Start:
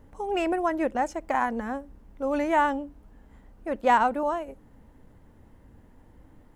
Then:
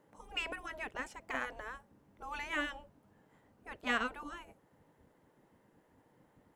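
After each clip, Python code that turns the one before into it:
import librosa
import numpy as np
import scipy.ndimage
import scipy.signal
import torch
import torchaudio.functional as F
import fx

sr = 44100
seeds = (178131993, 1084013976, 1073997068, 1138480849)

y = fx.spec_gate(x, sr, threshold_db=-10, keep='weak')
y = fx.dynamic_eq(y, sr, hz=3100.0, q=1.3, threshold_db=-50.0, ratio=4.0, max_db=7)
y = y * librosa.db_to_amplitude(-6.5)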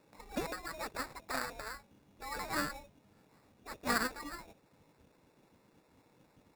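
y = fx.sample_hold(x, sr, seeds[0], rate_hz=3100.0, jitter_pct=0)
y = y * librosa.db_to_amplitude(1.0)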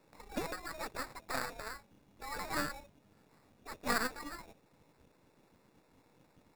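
y = np.where(x < 0.0, 10.0 ** (-7.0 / 20.0) * x, x)
y = y * librosa.db_to_amplitude(2.0)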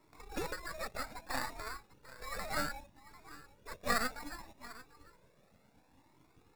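y = x + 10.0 ** (-17.5 / 20.0) * np.pad(x, (int(744 * sr / 1000.0), 0))[:len(x)]
y = fx.comb_cascade(y, sr, direction='rising', hz=0.65)
y = y * librosa.db_to_amplitude(4.5)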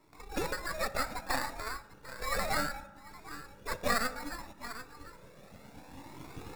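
y = fx.recorder_agc(x, sr, target_db=-22.0, rise_db_per_s=7.4, max_gain_db=30)
y = fx.rev_fdn(y, sr, rt60_s=1.2, lf_ratio=0.95, hf_ratio=0.4, size_ms=11.0, drr_db=12.5)
y = y * librosa.db_to_amplitude(2.0)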